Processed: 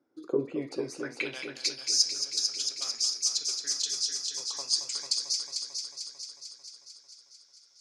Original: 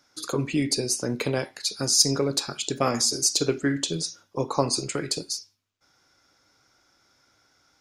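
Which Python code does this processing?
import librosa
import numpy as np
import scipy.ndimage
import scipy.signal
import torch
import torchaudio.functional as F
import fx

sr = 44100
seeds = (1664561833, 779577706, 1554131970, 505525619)

y = fx.filter_sweep_bandpass(x, sr, from_hz=340.0, to_hz=5300.0, start_s=0.3, end_s=1.57, q=2.7)
y = fx.echo_heads(y, sr, ms=223, heads='first and second', feedback_pct=63, wet_db=-9.0)
y = fx.rider(y, sr, range_db=3, speed_s=0.5)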